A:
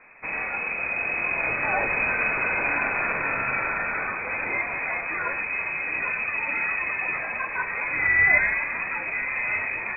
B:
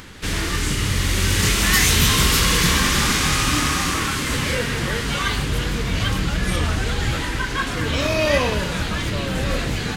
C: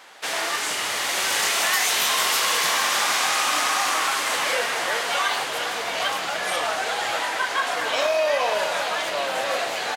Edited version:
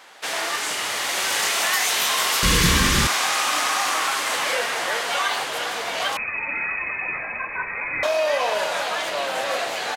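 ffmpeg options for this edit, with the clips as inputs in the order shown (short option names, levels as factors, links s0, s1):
-filter_complex "[2:a]asplit=3[s0][s1][s2];[s0]atrim=end=2.432[s3];[1:a]atrim=start=2.428:end=3.072[s4];[s1]atrim=start=3.068:end=6.172[s5];[0:a]atrim=start=6.168:end=8.032[s6];[s2]atrim=start=8.028[s7];[s3][s4]acrossfade=d=0.004:c1=hsin:c2=hsin[s8];[s8][s5]acrossfade=d=0.004:c1=hsin:c2=hsin[s9];[s9][s6]acrossfade=d=0.004:c1=hsin:c2=hsin[s10];[s10][s7]acrossfade=d=0.004:c1=hsin:c2=hsin"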